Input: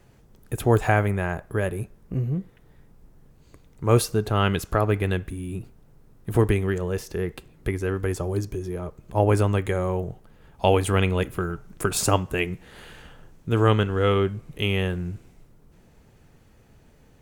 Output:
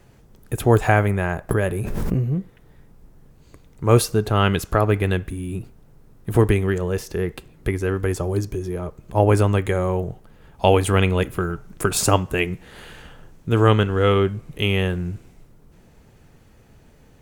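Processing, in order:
0:01.49–0:02.27: background raised ahead of every attack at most 20 dB per second
level +3.5 dB

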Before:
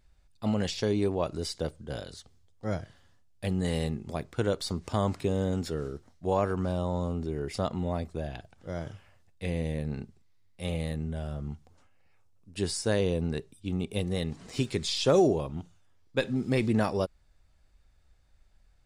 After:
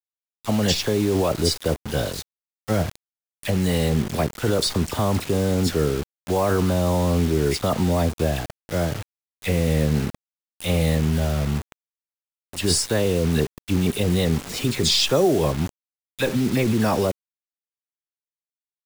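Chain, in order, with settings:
in parallel at +3 dB: compressor whose output falls as the input rises −31 dBFS, ratio −0.5
on the sum: all-pass dispersion lows, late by 54 ms, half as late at 1,900 Hz
bit reduction 6 bits
level +3 dB

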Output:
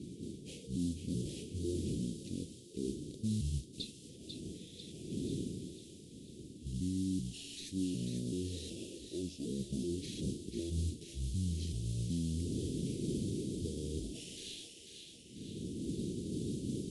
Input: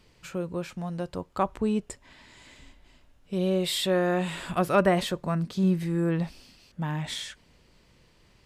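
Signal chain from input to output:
pitch shifter gated in a rhythm −6.5 semitones, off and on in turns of 189 ms
wind on the microphone 400 Hz −41 dBFS
meter weighting curve A
reversed playback
downward compressor 6 to 1, threshold −39 dBFS, peak gain reduction 18 dB
reversed playback
brickwall limiter −35 dBFS, peak gain reduction 7.5 dB
in parallel at −7.5 dB: sample-rate reduction 8,300 Hz
on the sum: noise that follows the level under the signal 18 dB
elliptic band-stop filter 760–6,500 Hz, stop band 80 dB
delay with a high-pass on its return 247 ms, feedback 56%, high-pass 1,400 Hz, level −6 dB
wrong playback speed 15 ips tape played at 7.5 ips
level +6 dB

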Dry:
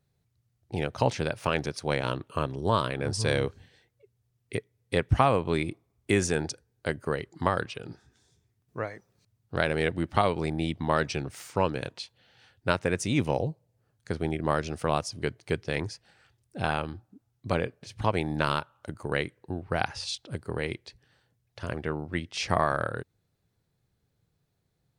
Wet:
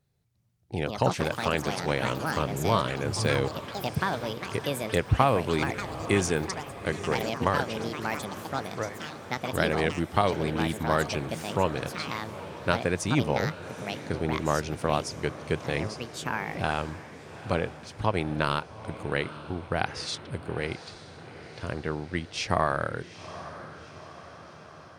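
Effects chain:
feedback delay with all-pass diffusion 844 ms, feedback 61%, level −14 dB
delay with pitch and tempo change per echo 348 ms, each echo +6 semitones, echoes 3, each echo −6 dB

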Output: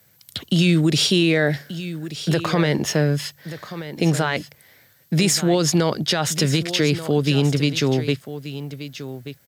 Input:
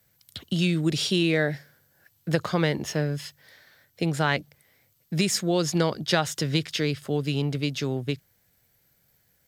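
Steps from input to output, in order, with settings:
high-pass filter 93 Hz
brickwall limiter −18 dBFS, peak gain reduction 11.5 dB
single-tap delay 1,182 ms −13 dB
level +9 dB

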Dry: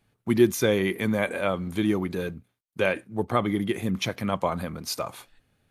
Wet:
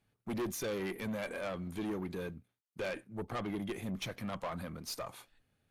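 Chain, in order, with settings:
tube saturation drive 25 dB, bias 0.3
level −7.5 dB

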